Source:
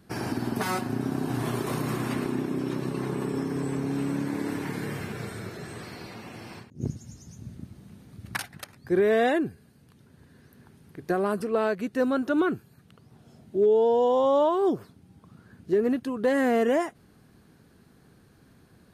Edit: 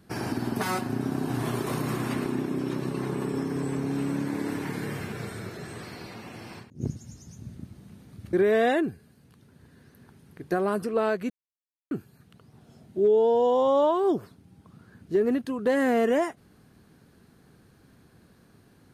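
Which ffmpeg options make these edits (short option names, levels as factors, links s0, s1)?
-filter_complex "[0:a]asplit=4[s0][s1][s2][s3];[s0]atrim=end=8.332[s4];[s1]atrim=start=8.908:end=11.88,asetpts=PTS-STARTPTS,afade=t=out:st=2.968:d=0.004:c=hsin[s5];[s2]atrim=start=11.88:end=12.49,asetpts=PTS-STARTPTS,volume=0[s6];[s3]atrim=start=12.49,asetpts=PTS-STARTPTS,afade=t=in:d=0.004:c=hsin[s7];[s5][s6][s7]concat=n=3:v=0:a=1[s8];[s4][s8]acrossfade=d=0.004:c1=hsin:c2=hsin"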